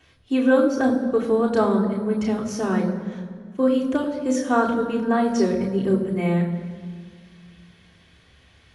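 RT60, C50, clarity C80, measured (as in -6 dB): 1.9 s, 8.0 dB, 9.0 dB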